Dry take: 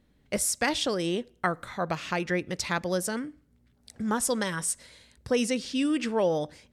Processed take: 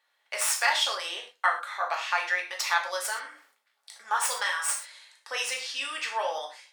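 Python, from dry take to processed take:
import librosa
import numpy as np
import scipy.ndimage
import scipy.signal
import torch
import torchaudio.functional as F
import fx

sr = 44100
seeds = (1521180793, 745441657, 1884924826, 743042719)

y = fx.tracing_dist(x, sr, depth_ms=0.03)
y = scipy.signal.sosfilt(scipy.signal.butter(4, 830.0, 'highpass', fs=sr, output='sos'), y)
y = fx.high_shelf(y, sr, hz=5300.0, db=-5.0)
y = fx.rev_gated(y, sr, seeds[0], gate_ms=150, shape='falling', drr_db=-0.5)
y = fx.sustainer(y, sr, db_per_s=100.0, at=(3.19, 4.01))
y = y * 10.0 ** (2.5 / 20.0)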